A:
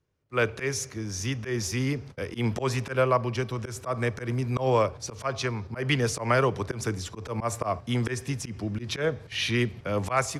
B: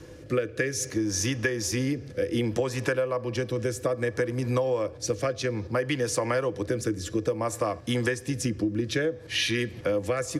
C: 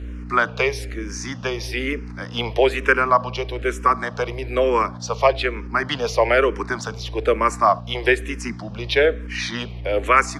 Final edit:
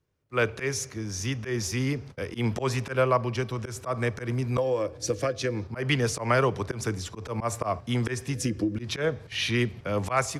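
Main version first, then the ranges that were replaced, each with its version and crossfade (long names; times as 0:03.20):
A
0:04.58–0:05.64: punch in from B
0:08.35–0:08.76: punch in from B
not used: C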